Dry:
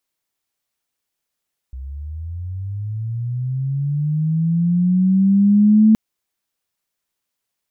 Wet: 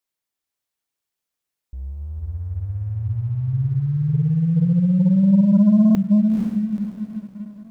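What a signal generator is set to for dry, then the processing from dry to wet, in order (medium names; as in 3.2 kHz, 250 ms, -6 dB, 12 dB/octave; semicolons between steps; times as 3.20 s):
sweep linear 63 Hz -> 220 Hz -28 dBFS -> -7.5 dBFS 4.22 s
echo that smears into a reverb 478 ms, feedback 42%, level -4.5 dB; waveshaping leveller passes 1; feedback comb 65 Hz, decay 1.7 s, harmonics all, mix 40%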